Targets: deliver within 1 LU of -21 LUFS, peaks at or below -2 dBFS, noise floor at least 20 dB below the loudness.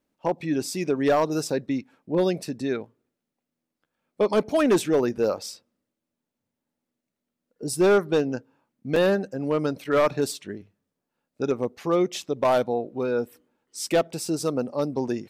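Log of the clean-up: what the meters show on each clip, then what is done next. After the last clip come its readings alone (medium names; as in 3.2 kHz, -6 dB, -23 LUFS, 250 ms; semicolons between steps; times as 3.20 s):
clipped samples 0.8%; clipping level -14.5 dBFS; dropouts 1; longest dropout 3.0 ms; loudness -25.0 LUFS; peak level -14.5 dBFS; loudness target -21.0 LUFS
-> clip repair -14.5 dBFS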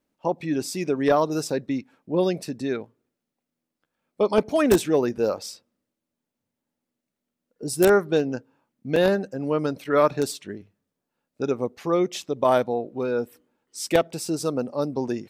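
clipped samples 0.0%; dropouts 1; longest dropout 3.0 ms
-> interpolate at 8.96 s, 3 ms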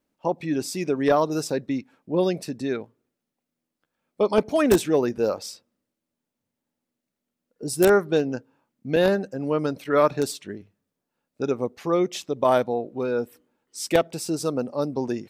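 dropouts 0; loudness -24.0 LUFS; peak level -5.5 dBFS; loudness target -21.0 LUFS
-> trim +3 dB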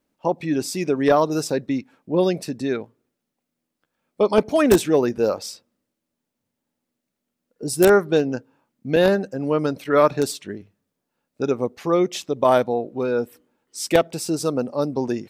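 loudness -21.0 LUFS; peak level -2.5 dBFS; noise floor -81 dBFS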